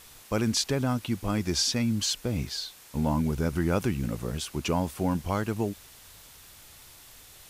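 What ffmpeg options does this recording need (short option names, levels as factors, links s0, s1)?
-af "adeclick=t=4,afftdn=nr=24:nf=-51"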